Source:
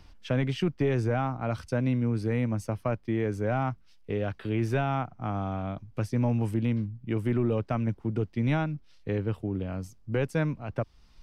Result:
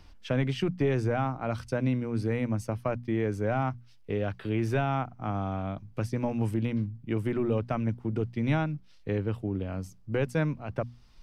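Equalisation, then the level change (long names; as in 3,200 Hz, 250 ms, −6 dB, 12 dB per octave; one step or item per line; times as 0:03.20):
mains-hum notches 60/120/180/240 Hz
0.0 dB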